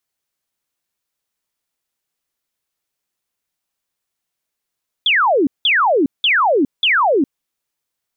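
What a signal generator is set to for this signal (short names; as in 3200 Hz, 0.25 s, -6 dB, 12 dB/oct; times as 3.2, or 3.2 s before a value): burst of laser zaps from 3600 Hz, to 250 Hz, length 0.41 s sine, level -11 dB, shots 4, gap 0.18 s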